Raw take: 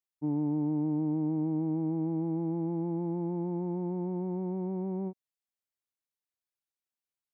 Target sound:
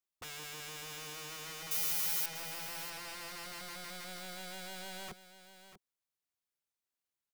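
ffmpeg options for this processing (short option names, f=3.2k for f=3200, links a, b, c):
-filter_complex "[0:a]aeval=exprs='(mod(106*val(0)+1,2)-1)/106':c=same,asettb=1/sr,asplit=3[a][b][c];[a]atrim=end=1.714[d];[b]atrim=start=1.71:end=2.26,asetpts=PTS-STARTPTS,afade=t=in:d=0.004:c=qsin,afade=t=out:st=0.546:d=0.004:c=qsin,aemphasis=mode=production:type=75fm[e];[c]atrim=start=2.256[f];[d][e]acrossfade=d=0.004:c1=hsin:c2=qsin[g];[g][f]acrossfade=d=0.004:c1=qsin:c2=hsin,asplit=2[h][i];[i]aecho=0:1:641:0.237[j];[h][j]amix=inputs=2:normalize=0"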